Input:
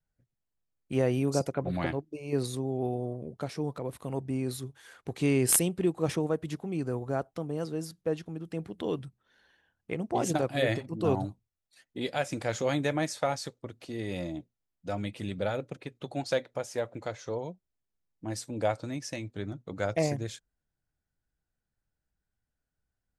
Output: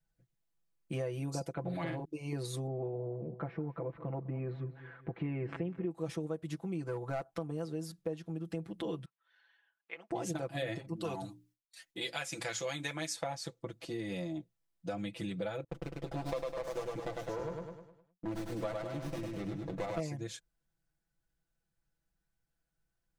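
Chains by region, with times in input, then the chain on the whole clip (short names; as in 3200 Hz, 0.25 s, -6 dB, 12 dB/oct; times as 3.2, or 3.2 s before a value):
1.65–2.05 doubler 47 ms -7.5 dB + fast leveller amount 50%
2.67–5.91 LPF 2100 Hz 24 dB/oct + feedback echo 0.201 s, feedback 41%, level -17 dB
6.86–7.51 bell 1300 Hz +5.5 dB 2 oct + hard clip -23 dBFS
9.05–10.11 HPF 1300 Hz + air absorption 240 m
10.96–13.16 notches 60/120/180/240/300/360 Hz + gate with hold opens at -54 dBFS, closes at -60 dBFS + tilt shelf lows -6.5 dB, about 1100 Hz
15.64–20 gate -53 dBFS, range -23 dB + feedback echo 0.102 s, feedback 45%, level -3 dB + running maximum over 17 samples
whole clip: comb 6 ms, depth 89%; compressor 4:1, threshold -34 dBFS; gain -1.5 dB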